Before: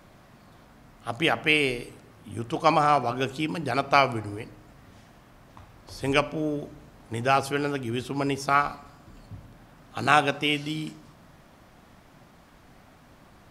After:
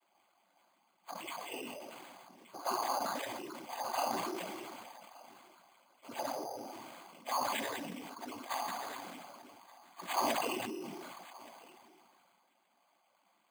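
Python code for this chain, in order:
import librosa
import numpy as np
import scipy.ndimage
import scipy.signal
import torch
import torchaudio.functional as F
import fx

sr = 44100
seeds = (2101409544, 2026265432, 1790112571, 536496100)

p1 = fx.partial_stretch(x, sr, pct=117)
p2 = scipy.signal.sosfilt(scipy.signal.butter(4, 330.0, 'highpass', fs=sr, output='sos'), p1)
p3 = fx.env_flanger(p2, sr, rest_ms=9.9, full_db=-21.0)
p4 = fx.fixed_phaser(p3, sr, hz=1600.0, stages=6)
p5 = fx.noise_vocoder(p4, sr, seeds[0], bands=16)
p6 = p5 + fx.echo_single(p5, sr, ms=1174, db=-21.0, dry=0)
p7 = np.repeat(scipy.signal.resample_poly(p6, 1, 8), 8)[:len(p6)]
p8 = fx.sustainer(p7, sr, db_per_s=21.0)
y = p8 * librosa.db_to_amplitude(-5.5)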